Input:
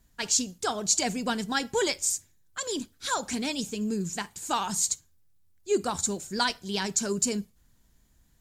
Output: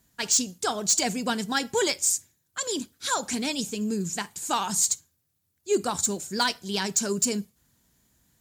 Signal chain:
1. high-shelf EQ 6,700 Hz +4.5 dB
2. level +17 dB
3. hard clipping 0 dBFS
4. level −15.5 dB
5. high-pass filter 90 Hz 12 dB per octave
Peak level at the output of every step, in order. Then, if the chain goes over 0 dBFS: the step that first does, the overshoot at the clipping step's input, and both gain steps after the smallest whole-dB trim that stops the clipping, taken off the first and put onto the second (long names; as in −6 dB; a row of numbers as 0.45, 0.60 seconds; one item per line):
−8.5, +8.5, 0.0, −15.5, −14.5 dBFS
step 2, 8.5 dB
step 2 +8 dB, step 4 −6.5 dB